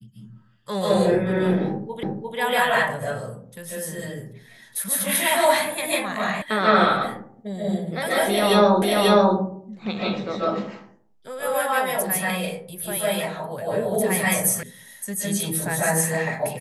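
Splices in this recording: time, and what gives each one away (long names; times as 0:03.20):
0:02.03: the same again, the last 0.35 s
0:06.42: cut off before it has died away
0:08.82: the same again, the last 0.54 s
0:14.63: cut off before it has died away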